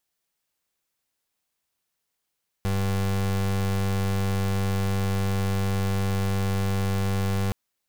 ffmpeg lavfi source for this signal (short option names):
-f lavfi -i "aevalsrc='0.0596*(2*lt(mod(97.2*t,1),0.31)-1)':d=4.87:s=44100"